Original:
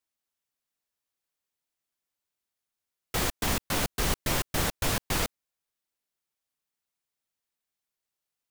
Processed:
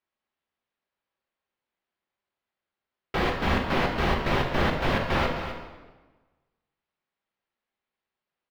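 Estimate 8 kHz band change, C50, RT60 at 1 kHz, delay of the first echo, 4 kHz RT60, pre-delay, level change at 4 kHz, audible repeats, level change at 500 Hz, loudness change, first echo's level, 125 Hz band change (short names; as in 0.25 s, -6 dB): -17.5 dB, 3.5 dB, 1.2 s, 0.258 s, 1.0 s, 3 ms, -0.5 dB, 1, +7.5 dB, +2.5 dB, -10.5 dB, +4.5 dB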